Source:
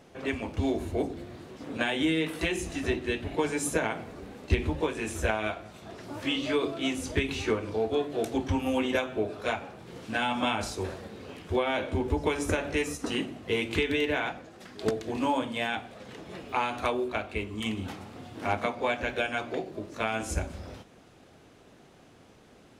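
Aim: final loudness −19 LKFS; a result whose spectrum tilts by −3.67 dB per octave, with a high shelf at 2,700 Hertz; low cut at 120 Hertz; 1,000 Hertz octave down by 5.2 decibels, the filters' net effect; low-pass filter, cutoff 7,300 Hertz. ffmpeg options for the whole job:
ffmpeg -i in.wav -af "highpass=120,lowpass=7300,equalizer=frequency=1000:width_type=o:gain=-8,highshelf=frequency=2700:gain=6,volume=12dB" out.wav

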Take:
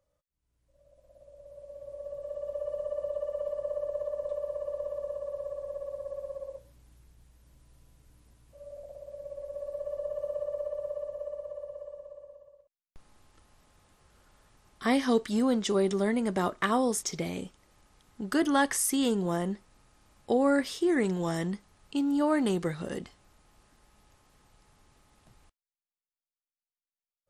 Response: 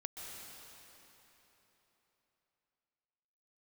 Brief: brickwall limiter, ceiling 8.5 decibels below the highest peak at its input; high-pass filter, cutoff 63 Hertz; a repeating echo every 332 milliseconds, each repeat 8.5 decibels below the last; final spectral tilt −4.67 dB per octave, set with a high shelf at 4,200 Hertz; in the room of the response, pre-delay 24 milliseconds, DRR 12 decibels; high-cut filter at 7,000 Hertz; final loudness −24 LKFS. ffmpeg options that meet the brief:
-filter_complex "[0:a]highpass=63,lowpass=7000,highshelf=frequency=4200:gain=4.5,alimiter=limit=-20dB:level=0:latency=1,aecho=1:1:332|664|996|1328:0.376|0.143|0.0543|0.0206,asplit=2[link_01][link_02];[1:a]atrim=start_sample=2205,adelay=24[link_03];[link_02][link_03]afir=irnorm=-1:irlink=0,volume=-10.5dB[link_04];[link_01][link_04]amix=inputs=2:normalize=0,volume=8dB"

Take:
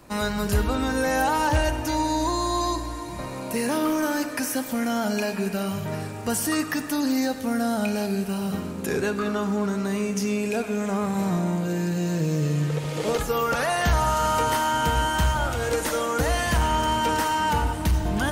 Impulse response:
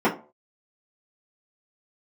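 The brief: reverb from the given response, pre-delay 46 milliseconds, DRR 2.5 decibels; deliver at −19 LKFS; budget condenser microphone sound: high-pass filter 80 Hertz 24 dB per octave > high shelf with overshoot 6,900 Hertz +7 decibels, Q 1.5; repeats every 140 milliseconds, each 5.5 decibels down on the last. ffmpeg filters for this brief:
-filter_complex "[0:a]aecho=1:1:140|280|420|560|700|840|980:0.531|0.281|0.149|0.079|0.0419|0.0222|0.0118,asplit=2[link_01][link_02];[1:a]atrim=start_sample=2205,adelay=46[link_03];[link_02][link_03]afir=irnorm=-1:irlink=0,volume=-20dB[link_04];[link_01][link_04]amix=inputs=2:normalize=0,highpass=frequency=80:width=0.5412,highpass=frequency=80:width=1.3066,highshelf=frequency=6900:width_type=q:width=1.5:gain=7,volume=1.5dB"

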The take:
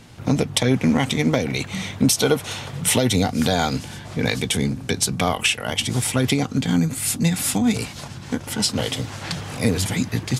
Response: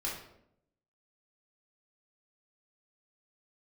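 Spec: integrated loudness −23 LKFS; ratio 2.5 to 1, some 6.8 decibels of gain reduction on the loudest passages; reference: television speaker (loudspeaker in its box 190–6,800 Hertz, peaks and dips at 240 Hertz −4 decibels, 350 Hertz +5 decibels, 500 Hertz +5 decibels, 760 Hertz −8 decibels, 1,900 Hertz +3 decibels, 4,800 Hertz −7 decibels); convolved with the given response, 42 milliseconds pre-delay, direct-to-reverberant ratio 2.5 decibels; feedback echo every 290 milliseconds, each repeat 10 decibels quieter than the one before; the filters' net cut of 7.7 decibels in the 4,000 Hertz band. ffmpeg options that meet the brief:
-filter_complex "[0:a]equalizer=frequency=4000:width_type=o:gain=-8.5,acompressor=threshold=-23dB:ratio=2.5,aecho=1:1:290|580|870|1160:0.316|0.101|0.0324|0.0104,asplit=2[link_01][link_02];[1:a]atrim=start_sample=2205,adelay=42[link_03];[link_02][link_03]afir=irnorm=-1:irlink=0,volume=-6dB[link_04];[link_01][link_04]amix=inputs=2:normalize=0,highpass=frequency=190:width=0.5412,highpass=frequency=190:width=1.3066,equalizer=frequency=240:width_type=q:width=4:gain=-4,equalizer=frequency=350:width_type=q:width=4:gain=5,equalizer=frequency=500:width_type=q:width=4:gain=5,equalizer=frequency=760:width_type=q:width=4:gain=-8,equalizer=frequency=1900:width_type=q:width=4:gain=3,equalizer=frequency=4800:width_type=q:width=4:gain=-7,lowpass=frequency=6800:width=0.5412,lowpass=frequency=6800:width=1.3066,volume=3.5dB"

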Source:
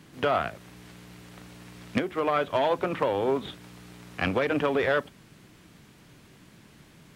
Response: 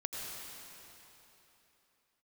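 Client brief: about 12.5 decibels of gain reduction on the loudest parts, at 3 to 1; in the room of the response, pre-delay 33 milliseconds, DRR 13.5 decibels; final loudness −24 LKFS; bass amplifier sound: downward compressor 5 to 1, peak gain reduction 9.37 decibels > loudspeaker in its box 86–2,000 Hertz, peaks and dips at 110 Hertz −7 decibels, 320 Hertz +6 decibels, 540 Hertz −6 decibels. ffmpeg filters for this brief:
-filter_complex "[0:a]acompressor=threshold=-38dB:ratio=3,asplit=2[link_01][link_02];[1:a]atrim=start_sample=2205,adelay=33[link_03];[link_02][link_03]afir=irnorm=-1:irlink=0,volume=-15.5dB[link_04];[link_01][link_04]amix=inputs=2:normalize=0,acompressor=threshold=-41dB:ratio=5,highpass=frequency=86:width=0.5412,highpass=frequency=86:width=1.3066,equalizer=frequency=110:width_type=q:width=4:gain=-7,equalizer=frequency=320:width_type=q:width=4:gain=6,equalizer=frequency=540:width_type=q:width=4:gain=-6,lowpass=frequency=2000:width=0.5412,lowpass=frequency=2000:width=1.3066,volume=23.5dB"

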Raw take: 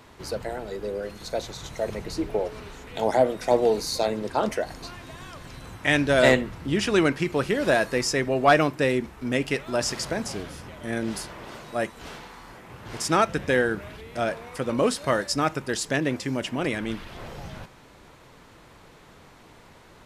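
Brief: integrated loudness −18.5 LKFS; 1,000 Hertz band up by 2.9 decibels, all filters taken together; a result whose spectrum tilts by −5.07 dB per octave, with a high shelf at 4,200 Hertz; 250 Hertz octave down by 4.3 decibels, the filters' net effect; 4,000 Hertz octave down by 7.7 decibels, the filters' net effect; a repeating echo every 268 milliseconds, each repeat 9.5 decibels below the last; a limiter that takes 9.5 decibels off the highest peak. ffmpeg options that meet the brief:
ffmpeg -i in.wav -af "equalizer=frequency=250:width_type=o:gain=-6,equalizer=frequency=1000:width_type=o:gain=5.5,equalizer=frequency=4000:width_type=o:gain=-8,highshelf=frequency=4200:gain=-4.5,alimiter=limit=-12.5dB:level=0:latency=1,aecho=1:1:268|536|804|1072:0.335|0.111|0.0365|0.012,volume=9dB" out.wav

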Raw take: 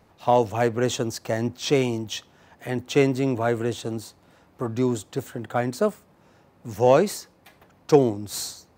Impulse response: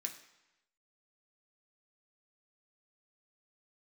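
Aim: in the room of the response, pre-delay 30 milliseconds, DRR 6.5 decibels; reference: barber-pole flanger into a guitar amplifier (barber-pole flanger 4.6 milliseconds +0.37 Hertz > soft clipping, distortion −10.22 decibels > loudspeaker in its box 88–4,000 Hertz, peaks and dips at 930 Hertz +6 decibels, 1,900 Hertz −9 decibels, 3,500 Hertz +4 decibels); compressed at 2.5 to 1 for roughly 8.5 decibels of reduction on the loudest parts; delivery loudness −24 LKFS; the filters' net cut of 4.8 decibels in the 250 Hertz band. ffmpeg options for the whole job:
-filter_complex "[0:a]equalizer=frequency=250:width_type=o:gain=-6,acompressor=threshold=-25dB:ratio=2.5,asplit=2[link_01][link_02];[1:a]atrim=start_sample=2205,adelay=30[link_03];[link_02][link_03]afir=irnorm=-1:irlink=0,volume=-4.5dB[link_04];[link_01][link_04]amix=inputs=2:normalize=0,asplit=2[link_05][link_06];[link_06]adelay=4.6,afreqshift=0.37[link_07];[link_05][link_07]amix=inputs=2:normalize=1,asoftclip=threshold=-28dB,highpass=88,equalizer=frequency=930:width_type=q:width=4:gain=6,equalizer=frequency=1900:width_type=q:width=4:gain=-9,equalizer=frequency=3500:width_type=q:width=4:gain=4,lowpass=frequency=4000:width=0.5412,lowpass=frequency=4000:width=1.3066,volume=12dB"

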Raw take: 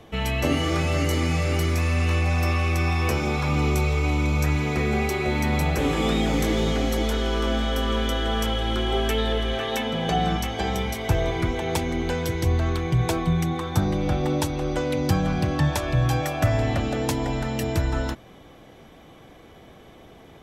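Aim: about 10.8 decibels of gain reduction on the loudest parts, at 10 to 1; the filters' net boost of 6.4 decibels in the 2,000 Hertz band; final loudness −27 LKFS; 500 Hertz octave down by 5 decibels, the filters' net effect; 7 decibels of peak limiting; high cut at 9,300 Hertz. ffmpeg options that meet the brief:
ffmpeg -i in.wav -af "lowpass=9300,equalizer=frequency=500:width_type=o:gain=-7,equalizer=frequency=2000:width_type=o:gain=8,acompressor=threshold=-27dB:ratio=10,volume=5dB,alimiter=limit=-18dB:level=0:latency=1" out.wav

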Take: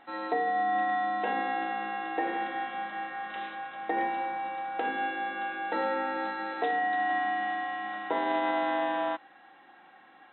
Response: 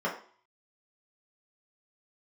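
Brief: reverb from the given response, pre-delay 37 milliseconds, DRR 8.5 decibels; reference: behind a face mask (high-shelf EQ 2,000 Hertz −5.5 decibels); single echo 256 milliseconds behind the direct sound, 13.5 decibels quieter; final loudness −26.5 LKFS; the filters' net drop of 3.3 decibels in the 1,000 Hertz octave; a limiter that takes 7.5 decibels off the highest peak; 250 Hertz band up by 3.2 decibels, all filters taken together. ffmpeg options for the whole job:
-filter_complex "[0:a]equalizer=frequency=250:width_type=o:gain=5,equalizer=frequency=1000:width_type=o:gain=-4.5,alimiter=level_in=0.5dB:limit=-24dB:level=0:latency=1,volume=-0.5dB,aecho=1:1:256:0.211,asplit=2[link_01][link_02];[1:a]atrim=start_sample=2205,adelay=37[link_03];[link_02][link_03]afir=irnorm=-1:irlink=0,volume=-18dB[link_04];[link_01][link_04]amix=inputs=2:normalize=0,highshelf=frequency=2000:gain=-5.5,volume=8dB"

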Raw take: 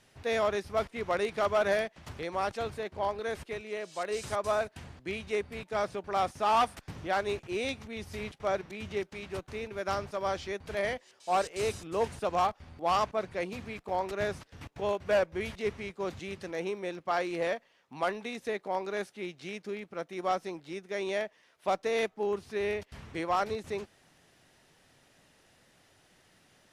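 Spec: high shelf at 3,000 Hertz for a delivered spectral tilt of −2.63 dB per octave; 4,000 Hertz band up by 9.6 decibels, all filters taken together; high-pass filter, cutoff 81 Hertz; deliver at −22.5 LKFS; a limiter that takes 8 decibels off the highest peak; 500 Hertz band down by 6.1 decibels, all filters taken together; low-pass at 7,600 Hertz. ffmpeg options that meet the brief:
ffmpeg -i in.wav -af "highpass=81,lowpass=7600,equalizer=frequency=500:width_type=o:gain=-8.5,highshelf=frequency=3000:gain=6.5,equalizer=frequency=4000:width_type=o:gain=7.5,volume=13dB,alimiter=limit=-7.5dB:level=0:latency=1" out.wav

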